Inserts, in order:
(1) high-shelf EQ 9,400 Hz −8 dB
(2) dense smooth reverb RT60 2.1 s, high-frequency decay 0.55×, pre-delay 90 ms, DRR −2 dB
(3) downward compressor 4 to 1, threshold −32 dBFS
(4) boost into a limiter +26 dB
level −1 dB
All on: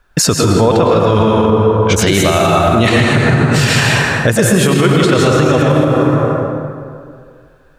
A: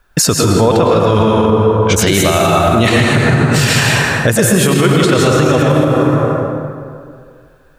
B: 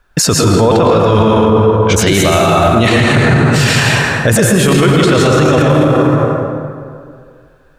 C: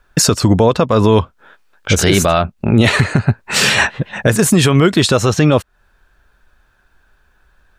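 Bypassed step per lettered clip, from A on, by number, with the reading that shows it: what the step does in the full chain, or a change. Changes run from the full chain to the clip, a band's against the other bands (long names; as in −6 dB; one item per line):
1, 8 kHz band +2.0 dB
3, average gain reduction 9.5 dB
2, change in crest factor +3.0 dB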